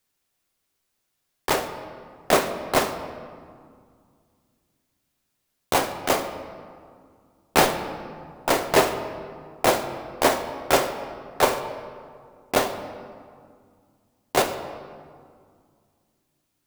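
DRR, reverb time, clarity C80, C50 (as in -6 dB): 6.5 dB, 2.1 s, 11.0 dB, 10.0 dB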